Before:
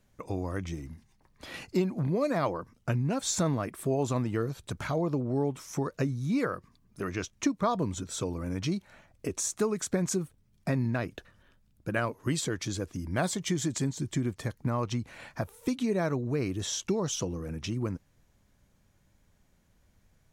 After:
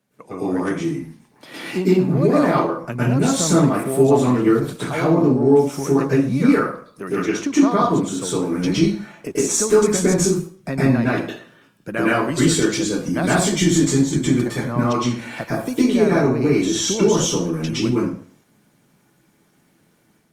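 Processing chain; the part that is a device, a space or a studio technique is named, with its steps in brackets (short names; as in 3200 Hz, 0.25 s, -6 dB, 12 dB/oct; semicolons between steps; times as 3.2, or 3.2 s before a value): far-field microphone of a smart speaker (reverb RT60 0.50 s, pre-delay 0.105 s, DRR -9 dB; HPF 140 Hz 24 dB/oct; AGC gain up to 4.5 dB; Opus 32 kbps 48000 Hz)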